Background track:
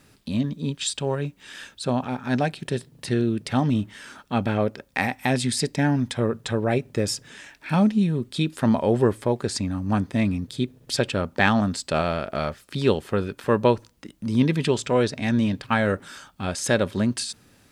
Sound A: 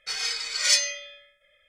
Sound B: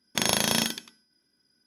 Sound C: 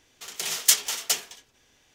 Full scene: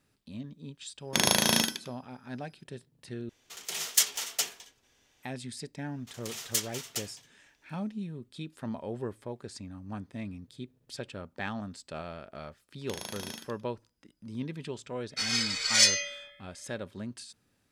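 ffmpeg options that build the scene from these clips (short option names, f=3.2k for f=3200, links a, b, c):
-filter_complex "[2:a]asplit=2[a][b];[3:a]asplit=2[c][d];[0:a]volume=-16.5dB,asplit=2[e][f];[e]atrim=end=3.294[g];[c]atrim=end=1.94,asetpts=PTS-STARTPTS,volume=-5dB[h];[f]atrim=start=5.226[i];[a]atrim=end=1.66,asetpts=PTS-STARTPTS,afade=t=in:d=0.004:c=hsin,afade=t=out:st=1.656:d=0.004:c=hsin,adelay=980[j];[d]atrim=end=1.94,asetpts=PTS-STARTPTS,volume=-11dB,afade=t=in:d=0.004:c=hsin,afade=t=out:st=1.936:d=0.004:c=hsin,adelay=5860[k];[b]atrim=end=1.66,asetpts=PTS-STARTPTS,volume=-16.5dB,afade=t=in:d=0.004:c=hsin,afade=t=out:st=1.656:d=0.004:c=hsin,adelay=12720[l];[1:a]atrim=end=1.68,asetpts=PTS-STARTPTS,volume=-0.5dB,afade=t=in:d=0.004:c=hsin,afade=t=out:st=1.676:d=0.004:c=hsin,adelay=15100[m];[g][h]acrossfade=d=0.004:c1=hsin:c2=hsin[n];[n][i]acrossfade=d=0.004:c1=hsin:c2=hsin[o];[o][j][k][l][m]amix=inputs=5:normalize=0"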